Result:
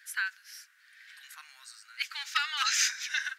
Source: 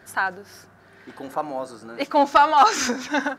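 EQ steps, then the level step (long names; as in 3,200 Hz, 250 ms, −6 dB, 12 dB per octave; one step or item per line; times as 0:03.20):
Butterworth high-pass 1,700 Hz 36 dB per octave
0.0 dB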